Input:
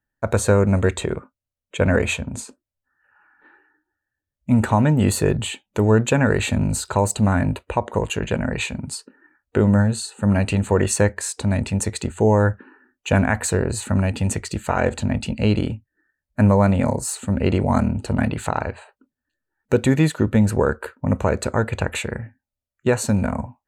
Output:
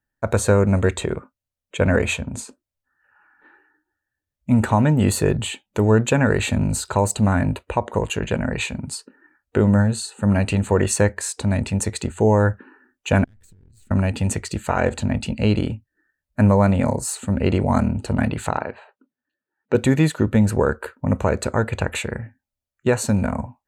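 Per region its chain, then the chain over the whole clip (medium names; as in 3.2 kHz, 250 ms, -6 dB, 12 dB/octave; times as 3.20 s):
13.24–13.91 s: partial rectifier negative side -12 dB + amplifier tone stack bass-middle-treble 10-0-1 + compression 20:1, threshold -46 dBFS
18.57–19.75 s: high-pass 190 Hz + distance through air 190 m
whole clip: none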